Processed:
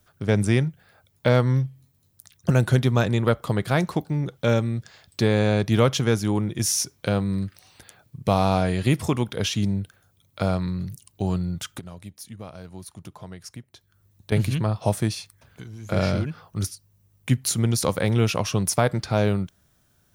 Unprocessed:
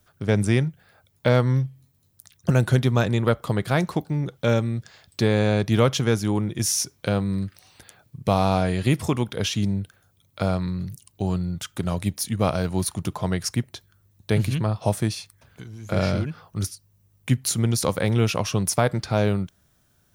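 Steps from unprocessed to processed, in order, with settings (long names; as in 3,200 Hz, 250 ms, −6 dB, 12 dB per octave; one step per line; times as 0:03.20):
0:11.79–0:14.32: downward compressor 2.5 to 1, threshold −44 dBFS, peak gain reduction 18.5 dB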